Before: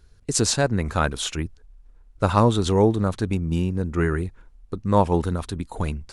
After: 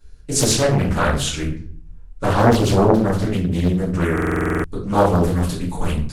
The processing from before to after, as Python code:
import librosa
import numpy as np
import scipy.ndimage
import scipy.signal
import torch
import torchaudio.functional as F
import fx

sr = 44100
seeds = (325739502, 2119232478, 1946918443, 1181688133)

y = fx.high_shelf(x, sr, hz=5700.0, db=fx.steps((0.0, 5.5), (3.64, 11.5)))
y = fx.room_shoebox(y, sr, seeds[0], volume_m3=61.0, walls='mixed', distance_m=2.3)
y = fx.buffer_glitch(y, sr, at_s=(4.13,), block=2048, repeats=10)
y = fx.doppler_dist(y, sr, depth_ms=0.9)
y = y * librosa.db_to_amplitude(-7.5)